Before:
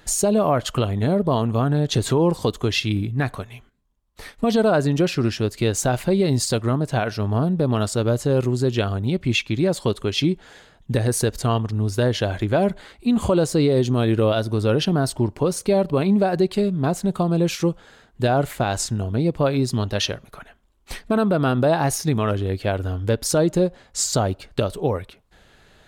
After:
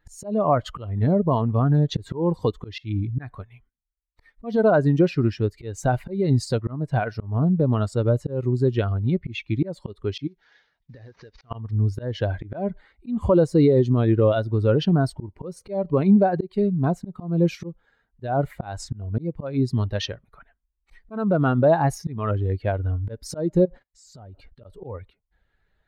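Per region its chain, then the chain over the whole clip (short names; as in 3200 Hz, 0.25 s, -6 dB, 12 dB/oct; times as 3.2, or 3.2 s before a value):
10.27–11.51 CVSD 32 kbps + tilt +2 dB/oct + compressor, threshold -33 dBFS
23.65–24.65 gate -48 dBFS, range -25 dB + compressor 12:1, threshold -31 dBFS + transient shaper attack -6 dB, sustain +8 dB
whole clip: per-bin expansion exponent 1.5; auto swell 0.239 s; LPF 1500 Hz 6 dB/oct; gain +4 dB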